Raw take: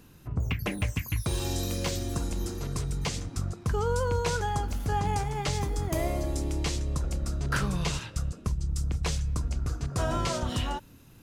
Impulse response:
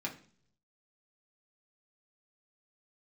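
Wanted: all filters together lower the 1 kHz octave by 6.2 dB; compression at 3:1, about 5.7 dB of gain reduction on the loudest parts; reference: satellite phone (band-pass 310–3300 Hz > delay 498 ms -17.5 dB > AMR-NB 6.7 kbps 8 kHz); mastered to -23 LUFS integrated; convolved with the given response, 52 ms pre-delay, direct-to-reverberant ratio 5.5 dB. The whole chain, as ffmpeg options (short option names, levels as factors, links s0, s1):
-filter_complex "[0:a]equalizer=f=1000:t=o:g=-8,acompressor=threshold=0.0251:ratio=3,asplit=2[s0][s1];[1:a]atrim=start_sample=2205,adelay=52[s2];[s1][s2]afir=irnorm=-1:irlink=0,volume=0.422[s3];[s0][s3]amix=inputs=2:normalize=0,highpass=310,lowpass=3300,aecho=1:1:498:0.133,volume=11.9" -ar 8000 -c:a libopencore_amrnb -b:a 6700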